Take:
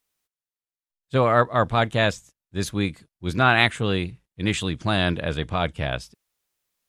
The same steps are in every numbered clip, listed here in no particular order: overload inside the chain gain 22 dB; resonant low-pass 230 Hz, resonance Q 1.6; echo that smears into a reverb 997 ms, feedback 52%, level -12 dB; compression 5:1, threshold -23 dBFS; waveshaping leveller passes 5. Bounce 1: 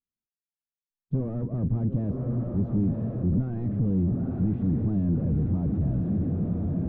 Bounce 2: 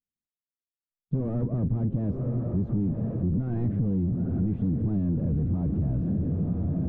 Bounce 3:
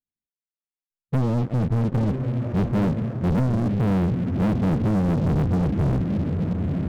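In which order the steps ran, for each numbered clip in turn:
echo that smears into a reverb > compression > overload inside the chain > waveshaping leveller > resonant low-pass; overload inside the chain > echo that smears into a reverb > waveshaping leveller > resonant low-pass > compression; compression > echo that smears into a reverb > overload inside the chain > resonant low-pass > waveshaping leveller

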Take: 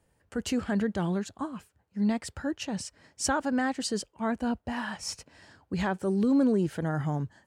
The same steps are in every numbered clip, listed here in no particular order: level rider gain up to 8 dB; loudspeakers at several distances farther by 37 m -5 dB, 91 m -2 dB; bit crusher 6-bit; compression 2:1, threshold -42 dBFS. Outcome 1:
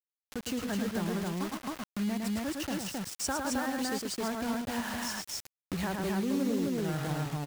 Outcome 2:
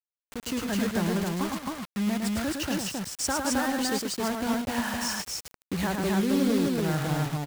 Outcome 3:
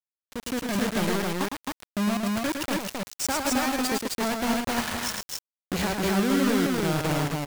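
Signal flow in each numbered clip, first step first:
bit crusher > level rider > loudspeakers at several distances > compression; compression > level rider > bit crusher > loudspeakers at several distances; compression > bit crusher > level rider > loudspeakers at several distances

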